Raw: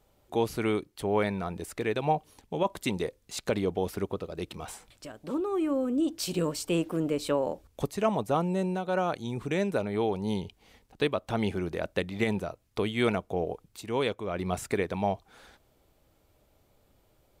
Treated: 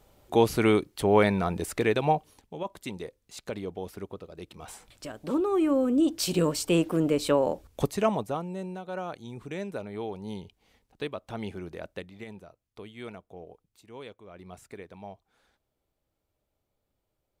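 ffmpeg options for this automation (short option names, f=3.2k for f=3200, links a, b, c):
-af "volume=17dB,afade=t=out:st=1.77:d=0.76:silence=0.223872,afade=t=in:st=4.55:d=0.54:silence=0.281838,afade=t=out:st=7.89:d=0.51:silence=0.281838,afade=t=out:st=11.83:d=0.4:silence=0.398107"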